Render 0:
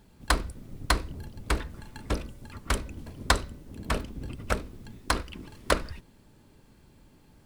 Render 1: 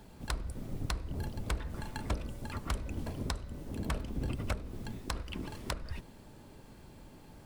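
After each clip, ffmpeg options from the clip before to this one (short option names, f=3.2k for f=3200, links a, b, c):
-filter_complex "[0:a]acompressor=threshold=-31dB:ratio=6,equalizer=f=690:w=1.2:g=4.5,acrossover=split=180[a][b];[b]acompressor=threshold=-40dB:ratio=5[c];[a][c]amix=inputs=2:normalize=0,volume=3.5dB"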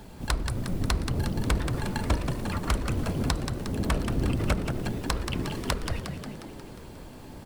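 -filter_complex "[0:a]asplit=9[a][b][c][d][e][f][g][h][i];[b]adelay=179,afreqshift=67,volume=-7dB[j];[c]adelay=358,afreqshift=134,volume=-11.3dB[k];[d]adelay=537,afreqshift=201,volume=-15.6dB[l];[e]adelay=716,afreqshift=268,volume=-19.9dB[m];[f]adelay=895,afreqshift=335,volume=-24.2dB[n];[g]adelay=1074,afreqshift=402,volume=-28.5dB[o];[h]adelay=1253,afreqshift=469,volume=-32.8dB[p];[i]adelay=1432,afreqshift=536,volume=-37.1dB[q];[a][j][k][l][m][n][o][p][q]amix=inputs=9:normalize=0,volume=8dB"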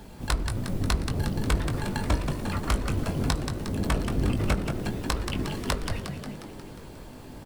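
-filter_complex "[0:a]asplit=2[a][b];[b]adelay=20,volume=-8.5dB[c];[a][c]amix=inputs=2:normalize=0"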